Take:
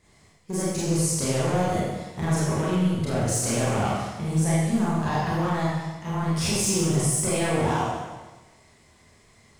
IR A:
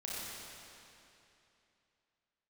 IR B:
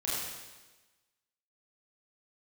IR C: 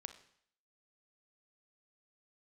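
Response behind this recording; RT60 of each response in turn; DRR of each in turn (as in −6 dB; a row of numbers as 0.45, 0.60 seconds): B; 2.9, 1.2, 0.65 seconds; −7.0, −8.5, 9.0 decibels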